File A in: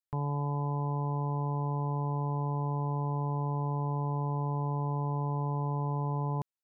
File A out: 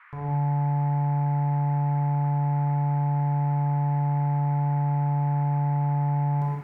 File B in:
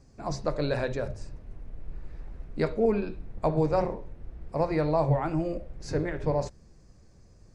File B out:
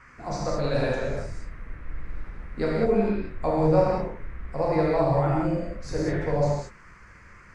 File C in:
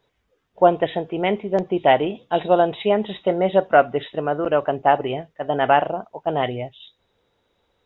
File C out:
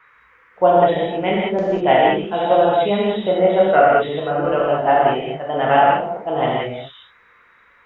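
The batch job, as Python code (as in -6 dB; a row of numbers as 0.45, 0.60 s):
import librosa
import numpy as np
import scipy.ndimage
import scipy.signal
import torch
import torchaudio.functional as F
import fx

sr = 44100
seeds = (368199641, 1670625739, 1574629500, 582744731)

y = fx.rev_gated(x, sr, seeds[0], gate_ms=230, shape='flat', drr_db=-5.5)
y = fx.dmg_noise_band(y, sr, seeds[1], low_hz=1000.0, high_hz=2200.0, level_db=-50.0)
y = y * 10.0 ** (-3.0 / 20.0)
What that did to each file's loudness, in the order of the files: +7.5, +3.5, +3.5 LU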